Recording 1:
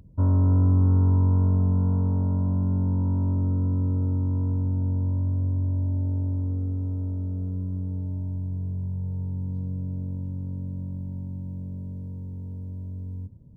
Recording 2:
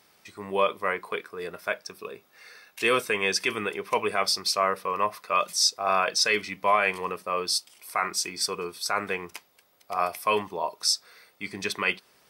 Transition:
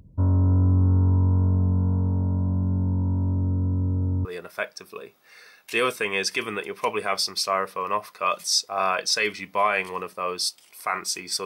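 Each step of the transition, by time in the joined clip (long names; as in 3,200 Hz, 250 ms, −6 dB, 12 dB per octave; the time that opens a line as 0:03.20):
recording 1
0:04.25: continue with recording 2 from 0:01.34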